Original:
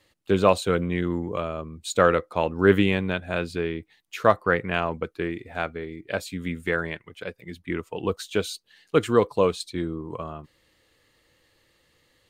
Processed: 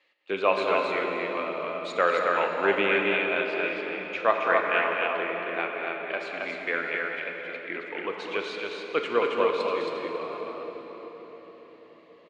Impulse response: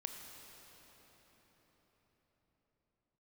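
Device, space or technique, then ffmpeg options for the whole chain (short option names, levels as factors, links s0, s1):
station announcement: -filter_complex "[0:a]highpass=470,lowpass=3700,equalizer=f=2400:t=o:w=0.48:g=8,aecho=1:1:204.1|271.1:0.316|0.708[s0];[1:a]atrim=start_sample=2205[s1];[s0][s1]afir=irnorm=-1:irlink=0,lowpass=7200"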